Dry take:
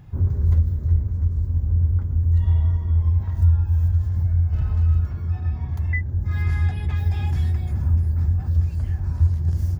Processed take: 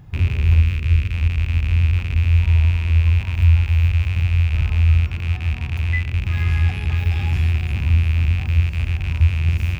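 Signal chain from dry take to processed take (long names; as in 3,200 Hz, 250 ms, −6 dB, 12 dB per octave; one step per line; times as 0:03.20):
loose part that buzzes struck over −26 dBFS, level −22 dBFS
0:00.61–0:01.12: parametric band 780 Hz −6.5 dB → −13.5 dB 0.49 octaves
convolution reverb RT60 0.35 s, pre-delay 23 ms, DRR 14 dB
level +2 dB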